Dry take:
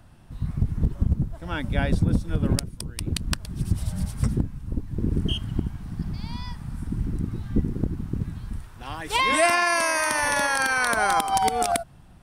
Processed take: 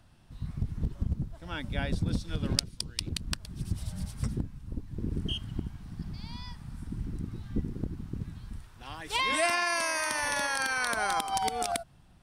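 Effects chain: peaking EQ 4.3 kHz +6.5 dB 1.8 oct, from 2.06 s +15 dB, from 3.09 s +5 dB; trim -8.5 dB

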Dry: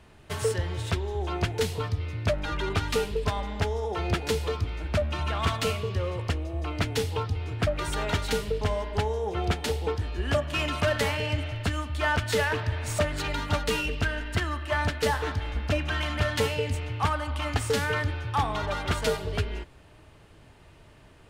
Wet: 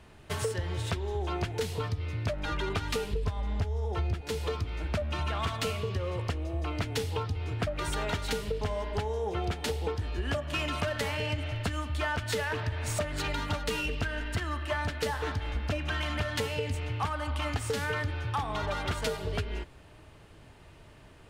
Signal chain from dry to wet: 3.13–4.21 s: peaking EQ 72 Hz +12 dB 2 oct; compression 12:1, threshold -27 dBFS, peak gain reduction 16.5 dB

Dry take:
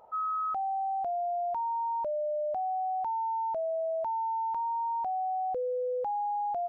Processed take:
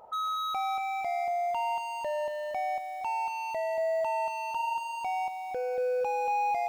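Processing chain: dynamic bell 510 Hz, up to -4 dB, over -41 dBFS, Q 2.1; hard clipper -34 dBFS, distortion -13 dB; bit-crushed delay 234 ms, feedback 35%, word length 10-bit, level -5 dB; trim +4 dB

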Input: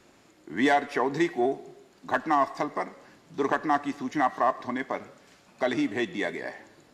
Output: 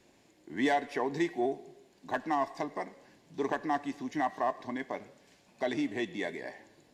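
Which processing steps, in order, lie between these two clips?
peaking EQ 1.3 kHz -12 dB 0.34 oct; trim -5 dB

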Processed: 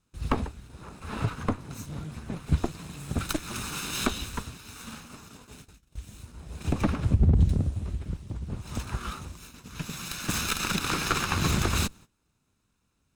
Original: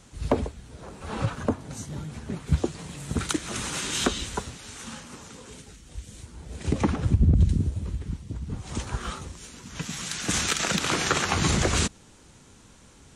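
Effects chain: comb filter that takes the minimum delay 0.78 ms; peaking EQ 6.6 kHz -3 dB 0.94 oct; gate -46 dBFS, range -19 dB; trim -1 dB

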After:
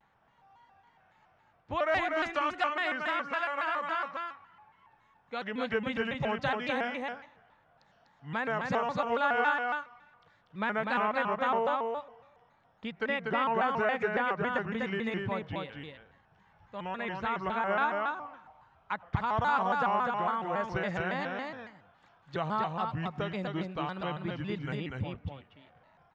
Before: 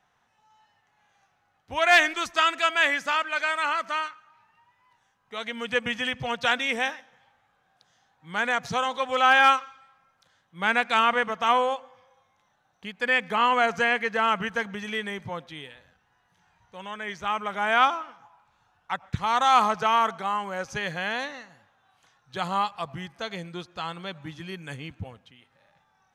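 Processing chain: dynamic bell 2.7 kHz, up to -4 dB, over -33 dBFS, Q 1; compression 2:1, threshold -33 dBFS, peak gain reduction 10.5 dB; tape spacing loss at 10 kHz 28 dB; delay 245 ms -3.5 dB; vibrato with a chosen wave square 3.6 Hz, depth 160 cents; trim +3.5 dB

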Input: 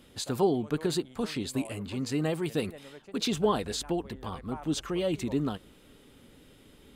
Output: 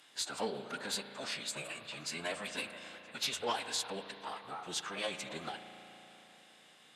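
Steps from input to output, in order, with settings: high-pass 950 Hz 12 dB/octave; Chebyshev shaper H 5 -10 dB, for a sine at -18 dBFS; formant-preserving pitch shift -10 st; spring tank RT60 3.6 s, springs 35 ms, chirp 25 ms, DRR 8.5 dB; trim -5.5 dB

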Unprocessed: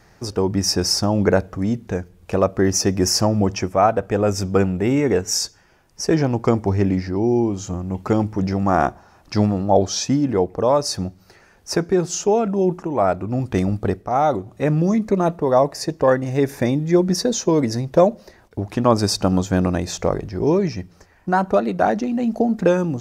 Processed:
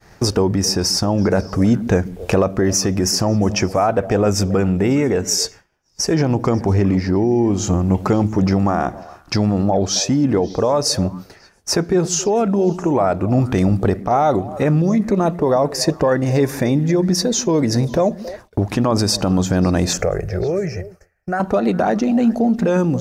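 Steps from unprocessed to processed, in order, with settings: in parallel at +2.5 dB: compression, threshold -32 dBFS, peak gain reduction 21 dB; on the sum: peak limiter -12 dBFS, peak gain reduction 9.5 dB; gain riding within 4 dB 0.5 s; 19.93–21.40 s: static phaser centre 980 Hz, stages 6; on a send: repeats whose band climbs or falls 136 ms, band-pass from 200 Hz, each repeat 1.4 oct, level -11 dB; on the sum: expander -34 dBFS; trim +4 dB

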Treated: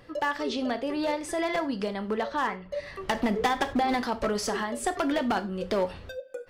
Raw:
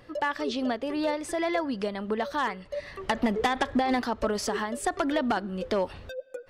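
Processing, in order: 2.22–2.71 s: low-pass 5 kHz -> 2 kHz 12 dB/octave; wavefolder -19.5 dBFS; gated-style reverb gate 120 ms falling, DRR 8.5 dB

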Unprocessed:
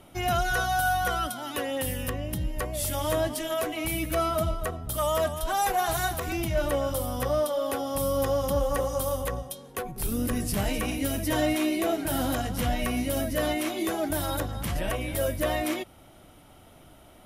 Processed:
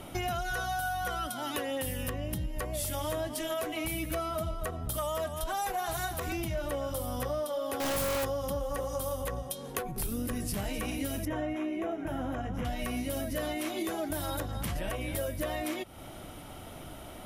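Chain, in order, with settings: 7.80–8.24 s: one-bit comparator; compression 5:1, threshold -40 dBFS, peak gain reduction 17 dB; 11.25–12.65 s: boxcar filter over 10 samples; trim +7.5 dB

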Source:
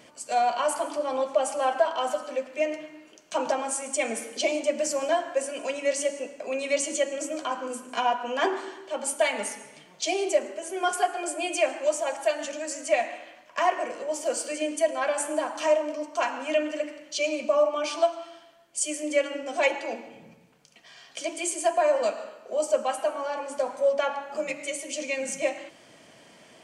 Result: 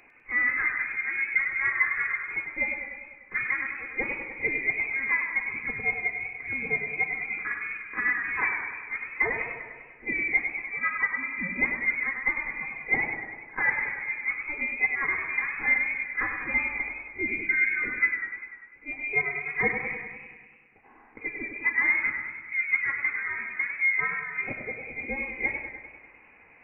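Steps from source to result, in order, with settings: frequency inversion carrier 2.7 kHz; reverse echo 43 ms -21 dB; modulated delay 99 ms, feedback 64%, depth 84 cents, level -7.5 dB; trim -2.5 dB

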